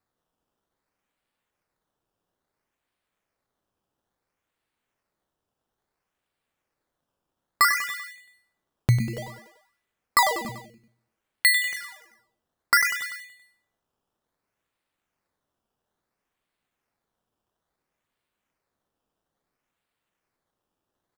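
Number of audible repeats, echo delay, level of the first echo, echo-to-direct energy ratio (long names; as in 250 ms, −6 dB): 4, 97 ms, −11.5 dB, −10.0 dB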